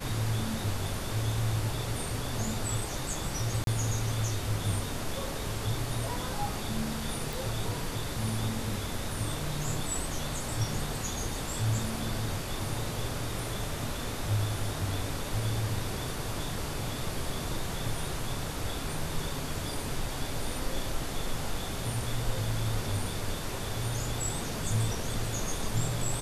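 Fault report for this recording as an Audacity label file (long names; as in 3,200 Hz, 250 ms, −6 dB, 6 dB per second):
3.640000	3.670000	drop-out 32 ms
7.330000	7.330000	click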